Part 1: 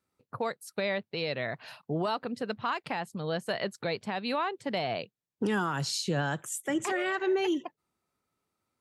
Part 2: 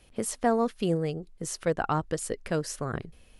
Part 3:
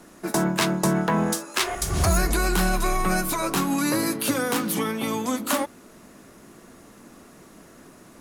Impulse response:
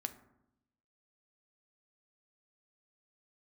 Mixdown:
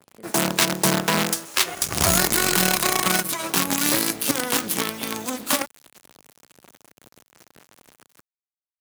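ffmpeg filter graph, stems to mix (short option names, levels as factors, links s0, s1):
-filter_complex "[1:a]volume=0.141[s0];[2:a]acrusher=bits=4:dc=4:mix=0:aa=0.000001,volume=1[s1];[s0][s1]amix=inputs=2:normalize=0,highpass=110,adynamicequalizer=threshold=0.0158:dfrequency=1900:dqfactor=0.7:tfrequency=1900:tqfactor=0.7:attack=5:release=100:ratio=0.375:range=2.5:mode=boostabove:tftype=highshelf"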